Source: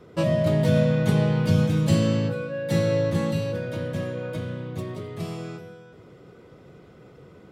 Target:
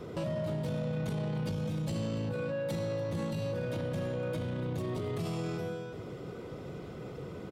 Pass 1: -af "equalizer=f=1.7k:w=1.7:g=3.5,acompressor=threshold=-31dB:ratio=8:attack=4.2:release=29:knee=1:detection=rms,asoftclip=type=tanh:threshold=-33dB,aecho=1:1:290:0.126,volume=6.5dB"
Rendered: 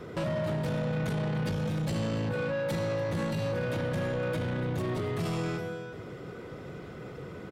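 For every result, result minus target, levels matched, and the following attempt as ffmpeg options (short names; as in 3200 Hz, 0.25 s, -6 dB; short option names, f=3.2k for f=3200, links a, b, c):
compressor: peak gain reduction -5.5 dB; 2000 Hz band +4.0 dB
-af "equalizer=f=1.7k:w=1.7:g=3.5,acompressor=threshold=-37.5dB:ratio=8:attack=4.2:release=29:knee=1:detection=rms,asoftclip=type=tanh:threshold=-33dB,aecho=1:1:290:0.126,volume=6.5dB"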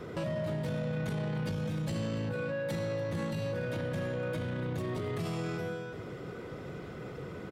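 2000 Hz band +5.0 dB
-af "equalizer=f=1.7k:w=1.7:g=-3.5,acompressor=threshold=-37.5dB:ratio=8:attack=4.2:release=29:knee=1:detection=rms,asoftclip=type=tanh:threshold=-33dB,aecho=1:1:290:0.126,volume=6.5dB"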